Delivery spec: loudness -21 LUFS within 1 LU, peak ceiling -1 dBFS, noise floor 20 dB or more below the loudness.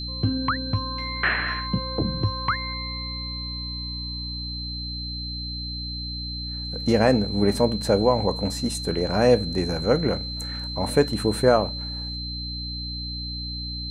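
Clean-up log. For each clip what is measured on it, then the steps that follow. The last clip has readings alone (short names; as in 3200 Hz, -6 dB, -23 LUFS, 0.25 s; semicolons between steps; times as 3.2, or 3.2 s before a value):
hum 60 Hz; harmonics up to 300 Hz; hum level -32 dBFS; steady tone 4100 Hz; tone level -32 dBFS; loudness -25.0 LUFS; peak -5.5 dBFS; loudness target -21.0 LUFS
-> notches 60/120/180/240/300 Hz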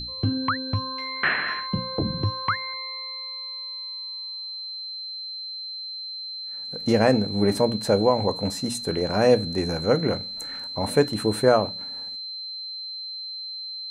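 hum none; steady tone 4100 Hz; tone level -32 dBFS
-> notch 4100 Hz, Q 30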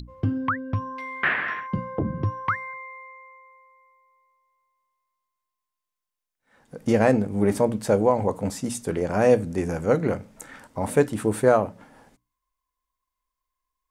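steady tone none; loudness -24.0 LUFS; peak -5.5 dBFS; loudness target -21.0 LUFS
-> gain +3 dB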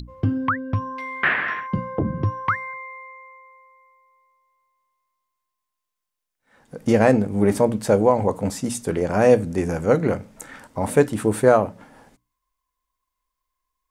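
loudness -21.0 LUFS; peak -2.5 dBFS; noise floor -82 dBFS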